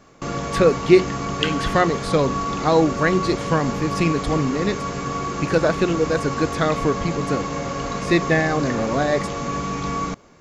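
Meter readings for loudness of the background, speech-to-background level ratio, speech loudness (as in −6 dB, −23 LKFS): −26.5 LKFS, 5.0 dB, −21.5 LKFS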